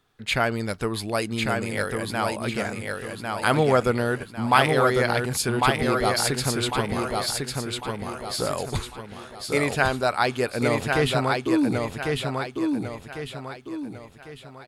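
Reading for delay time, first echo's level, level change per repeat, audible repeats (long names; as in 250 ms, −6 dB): 1,100 ms, −3.5 dB, −8.0 dB, 4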